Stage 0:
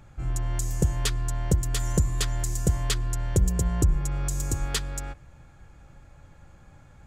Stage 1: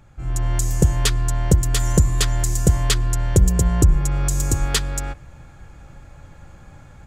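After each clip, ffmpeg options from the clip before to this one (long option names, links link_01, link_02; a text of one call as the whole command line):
ffmpeg -i in.wav -af "dynaudnorm=framelen=220:gausssize=3:maxgain=8dB" out.wav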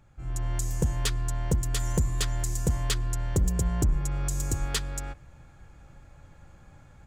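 ffmpeg -i in.wav -af "asoftclip=type=hard:threshold=-9.5dB,volume=-8.5dB" out.wav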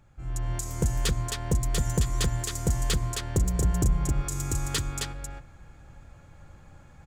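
ffmpeg -i in.wav -af "aecho=1:1:266:0.631" out.wav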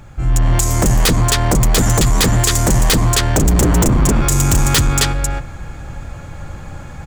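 ffmpeg -i in.wav -af "aeval=exprs='0.211*sin(PI/2*3.55*val(0)/0.211)':channel_layout=same,volume=5dB" out.wav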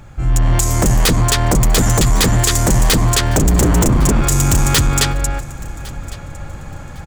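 ffmpeg -i in.wav -af "aecho=1:1:1106|2212:0.0891|0.0223" out.wav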